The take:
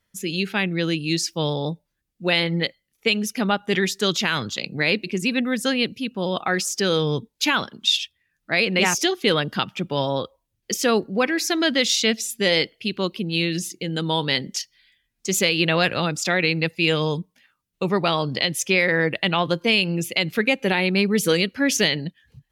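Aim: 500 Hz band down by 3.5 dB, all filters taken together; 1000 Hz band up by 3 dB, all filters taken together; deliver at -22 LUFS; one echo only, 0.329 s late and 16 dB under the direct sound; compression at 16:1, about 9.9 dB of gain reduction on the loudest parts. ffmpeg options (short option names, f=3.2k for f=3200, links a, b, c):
-af "equalizer=f=500:t=o:g=-5.5,equalizer=f=1k:t=o:g=5.5,acompressor=threshold=-24dB:ratio=16,aecho=1:1:329:0.158,volume=7dB"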